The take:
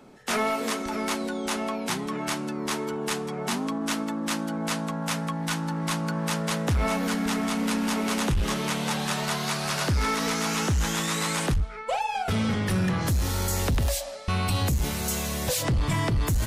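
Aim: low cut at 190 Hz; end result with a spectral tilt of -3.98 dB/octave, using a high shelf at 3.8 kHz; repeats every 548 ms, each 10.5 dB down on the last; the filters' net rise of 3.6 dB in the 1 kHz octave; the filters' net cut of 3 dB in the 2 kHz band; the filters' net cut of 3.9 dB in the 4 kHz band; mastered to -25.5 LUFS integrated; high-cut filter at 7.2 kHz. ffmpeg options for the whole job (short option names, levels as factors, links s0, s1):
-af "highpass=190,lowpass=7200,equalizer=f=1000:t=o:g=6,equalizer=f=2000:t=o:g=-5.5,highshelf=f=3800:g=3.5,equalizer=f=4000:t=o:g=-5.5,aecho=1:1:548|1096|1644:0.299|0.0896|0.0269,volume=1.33"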